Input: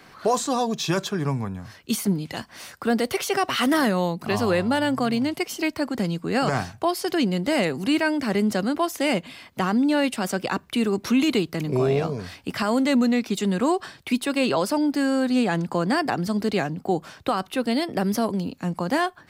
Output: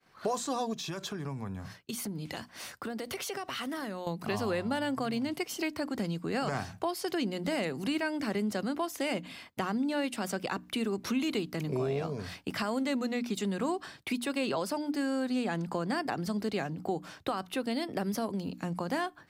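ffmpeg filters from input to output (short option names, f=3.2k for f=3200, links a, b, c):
-filter_complex "[0:a]asettb=1/sr,asplit=3[a][b][c];[a]atrim=end=0.734[d];[b]atrim=start=0.73:end=4.07,asetpts=PTS-STARTPTS,afade=t=in:d=0.004:c=qsin,afade=t=out:st=3.336:d=0.004:c=qsin,acompressor=threshold=-30dB:ratio=6:attack=3.2:release=140:knee=1:detection=peak[e];[c]atrim=start=4.066[f];[d][e]acrossfade=d=0.004:c1=hsin:c2=qsin[g];[g][f]acrossfade=d=0.004:c1=qsin:c2=hsin,bandreject=f=60:t=h:w=6,bandreject=f=120:t=h:w=6,bandreject=f=180:t=h:w=6,bandreject=f=240:t=h:w=6,bandreject=f=300:t=h:w=6,agate=range=-33dB:threshold=-40dB:ratio=3:detection=peak,acompressor=threshold=-31dB:ratio=2,volume=-2.5dB"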